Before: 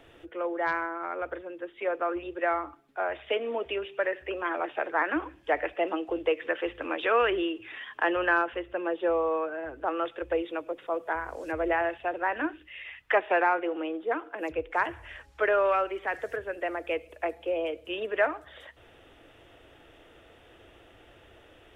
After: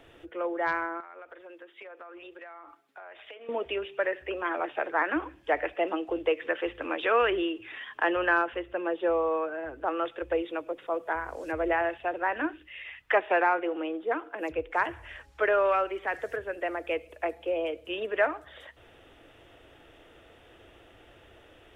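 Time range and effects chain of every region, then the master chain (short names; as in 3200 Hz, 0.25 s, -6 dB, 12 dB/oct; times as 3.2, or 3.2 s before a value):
1–3.49 HPF 790 Hz 6 dB/oct + compressor 10:1, threshold -42 dBFS
whole clip: dry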